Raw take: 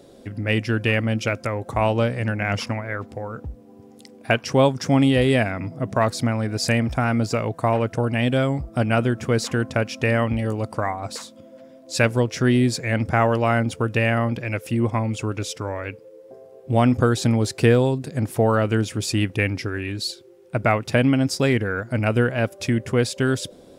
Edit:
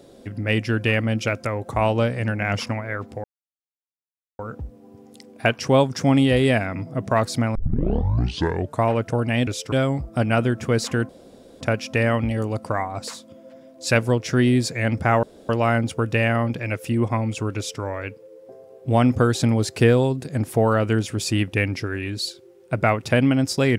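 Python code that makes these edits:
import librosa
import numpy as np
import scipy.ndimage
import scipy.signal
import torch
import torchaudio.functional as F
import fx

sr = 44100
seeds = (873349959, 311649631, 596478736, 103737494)

y = fx.edit(x, sr, fx.insert_silence(at_s=3.24, length_s=1.15),
    fx.tape_start(start_s=6.4, length_s=1.28),
    fx.insert_room_tone(at_s=9.69, length_s=0.52),
    fx.insert_room_tone(at_s=13.31, length_s=0.26),
    fx.duplicate(start_s=15.38, length_s=0.25, to_s=8.32), tone=tone)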